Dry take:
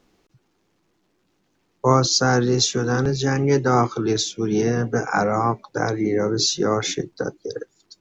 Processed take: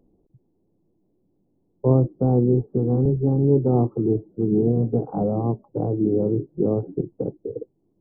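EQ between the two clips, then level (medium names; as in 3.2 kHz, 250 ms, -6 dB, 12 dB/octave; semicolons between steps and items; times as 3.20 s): Gaussian low-pass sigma 15 samples; +3.0 dB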